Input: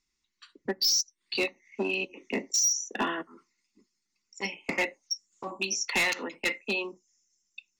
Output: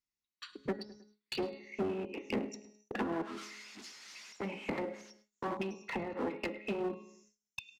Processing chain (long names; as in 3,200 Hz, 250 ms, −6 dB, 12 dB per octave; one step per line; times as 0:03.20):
0:03.11–0:05.14: spike at every zero crossing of −33.5 dBFS
brickwall limiter −28.5 dBFS, peak gain reduction 8.5 dB
hum removal 273.3 Hz, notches 17
treble cut that deepens with the level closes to 520 Hz, closed at −31.5 dBFS
high-shelf EQ 8,600 Hz −5 dB
tuned comb filter 210 Hz, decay 1 s, mix 60%
repeating echo 105 ms, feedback 43%, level −18.5 dB
noise gate with hold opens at −59 dBFS
low-shelf EQ 180 Hz +10 dB
asymmetric clip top −49.5 dBFS
high-pass filter 130 Hz 6 dB per octave
level +13 dB